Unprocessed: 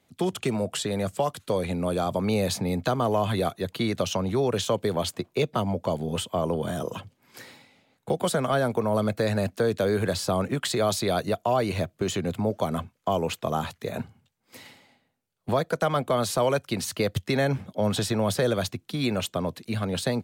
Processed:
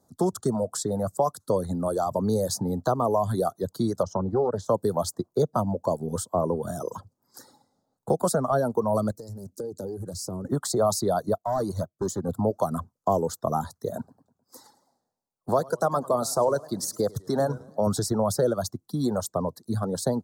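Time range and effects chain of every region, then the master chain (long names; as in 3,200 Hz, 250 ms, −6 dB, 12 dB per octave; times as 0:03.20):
0:04.03–0:04.69: low-pass filter 1,300 Hz 6 dB per octave + highs frequency-modulated by the lows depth 0.37 ms
0:09.11–0:10.45: flat-topped bell 1,500 Hz −13 dB 2.9 octaves + downward compressor 4 to 1, threshold −31 dBFS + highs frequency-modulated by the lows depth 0.24 ms
0:11.38–0:12.29: hard clipping −22.5 dBFS + expander for the loud parts, over −49 dBFS
0:13.97–0:17.87: low-shelf EQ 160 Hz −8.5 dB + notch filter 3,100 Hz, Q 8.8 + feedback echo with a swinging delay time 104 ms, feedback 50%, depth 186 cents, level −11.5 dB
whole clip: reverb reduction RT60 1.6 s; Chebyshev band-stop filter 1,100–5,600 Hz, order 2; level +3 dB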